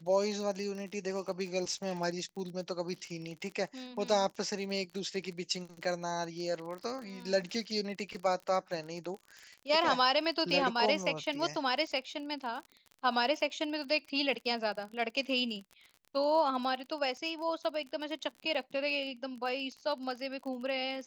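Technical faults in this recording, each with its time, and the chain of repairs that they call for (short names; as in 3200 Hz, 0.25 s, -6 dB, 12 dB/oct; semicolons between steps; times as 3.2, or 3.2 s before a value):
crackle 37/s -40 dBFS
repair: de-click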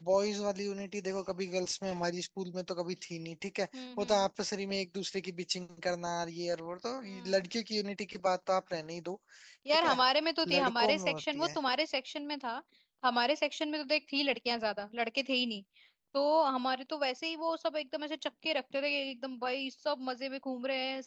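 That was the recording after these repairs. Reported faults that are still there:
none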